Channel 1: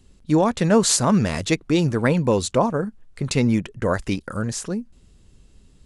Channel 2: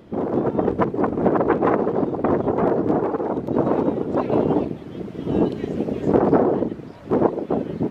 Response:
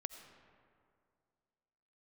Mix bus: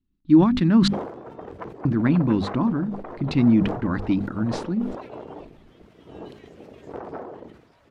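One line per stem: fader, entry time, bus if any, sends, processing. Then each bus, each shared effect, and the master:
-2.0 dB, 0.00 s, muted 0.88–1.85, no send, gate with hold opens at -40 dBFS; EQ curve 110 Hz 0 dB, 320 Hz +8 dB, 470 Hz -18 dB, 1100 Hz -4 dB, 4100 Hz -7 dB, 7200 Hz -28 dB
-11.5 dB, 0.80 s, no send, bell 220 Hz -12 dB 2.8 oct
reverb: off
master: notches 50/100/150/200/250 Hz; sustainer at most 75 dB/s

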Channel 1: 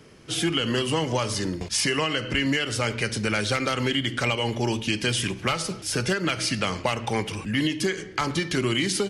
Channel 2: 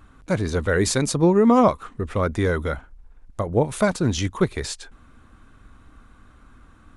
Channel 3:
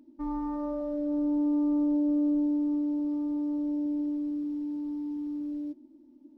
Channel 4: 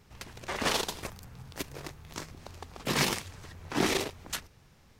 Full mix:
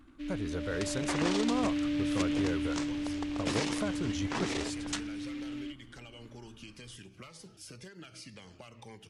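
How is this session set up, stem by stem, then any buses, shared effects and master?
-17.0 dB, 1.75 s, no send, compressor 3:1, threshold -29 dBFS, peak gain reduction 7.5 dB; cascading phaser falling 2 Hz
-11.0 dB, 0.00 s, no send, compressor 2:1, threshold -24 dBFS, peak gain reduction 7.5 dB
-5.5 dB, 0.00 s, no send, FFT band-reject 730–8800 Hz; noise-modulated delay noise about 2400 Hz, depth 0.09 ms
+2.0 dB, 0.60 s, no send, steep low-pass 8800 Hz; compressor 12:1, threshold -33 dBFS, peak gain reduction 12 dB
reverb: off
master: dry

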